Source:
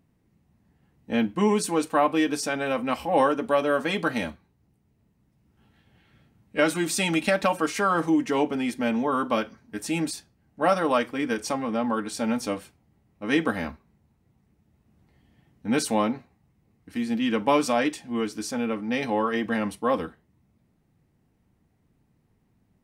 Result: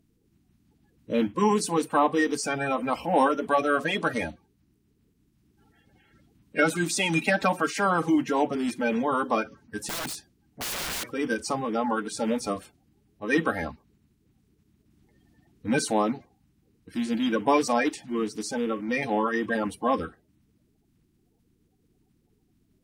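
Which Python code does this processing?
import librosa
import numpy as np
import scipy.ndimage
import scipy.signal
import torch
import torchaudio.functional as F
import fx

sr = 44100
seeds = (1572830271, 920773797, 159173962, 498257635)

y = fx.spec_quant(x, sr, step_db=30)
y = fx.overflow_wrap(y, sr, gain_db=27.0, at=(9.87, 11.04), fade=0.02)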